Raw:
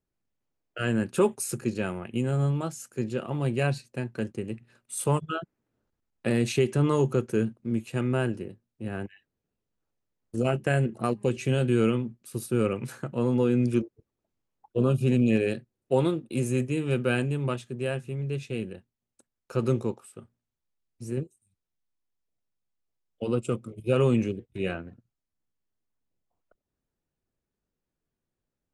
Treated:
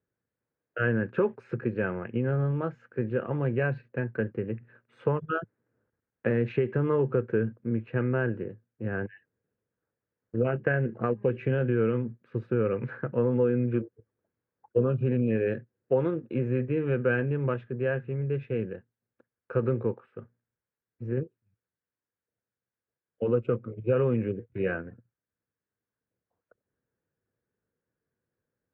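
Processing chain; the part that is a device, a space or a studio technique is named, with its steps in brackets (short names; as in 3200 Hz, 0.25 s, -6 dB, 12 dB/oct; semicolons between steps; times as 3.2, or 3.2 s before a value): bass amplifier (compressor 3:1, threshold -25 dBFS, peak gain reduction 6.5 dB; speaker cabinet 83–2200 Hz, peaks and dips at 110 Hz +6 dB, 480 Hz +8 dB, 740 Hz -3 dB, 1600 Hz +8 dB)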